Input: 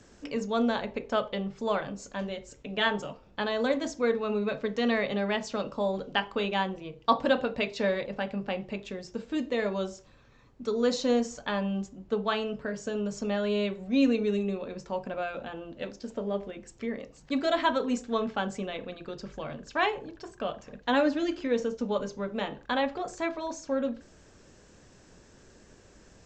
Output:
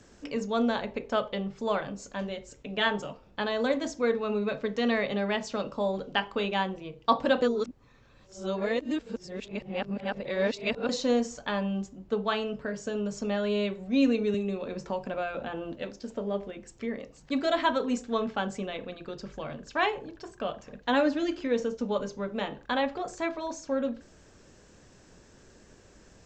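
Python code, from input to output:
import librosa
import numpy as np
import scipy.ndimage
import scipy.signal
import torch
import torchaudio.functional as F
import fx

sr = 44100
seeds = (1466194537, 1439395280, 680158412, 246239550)

y = fx.band_squash(x, sr, depth_pct=70, at=(14.34, 15.76))
y = fx.edit(y, sr, fx.reverse_span(start_s=7.42, length_s=3.47), tone=tone)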